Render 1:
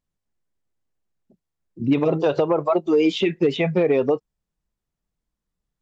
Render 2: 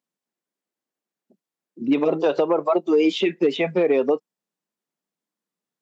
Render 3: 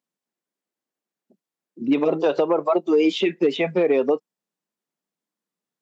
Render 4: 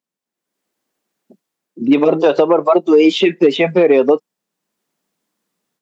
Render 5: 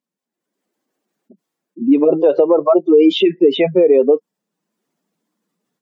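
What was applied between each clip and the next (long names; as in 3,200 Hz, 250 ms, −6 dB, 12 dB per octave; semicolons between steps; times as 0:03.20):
high-pass filter 210 Hz 24 dB per octave
no processing that can be heard
automatic gain control gain up to 14 dB
expanding power law on the bin magnitudes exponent 1.6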